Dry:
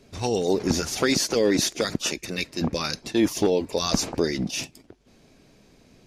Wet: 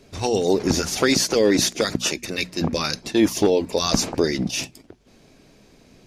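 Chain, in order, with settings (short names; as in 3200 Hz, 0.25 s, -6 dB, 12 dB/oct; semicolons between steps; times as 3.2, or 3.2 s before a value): notches 60/120/180/240 Hz; gain +3.5 dB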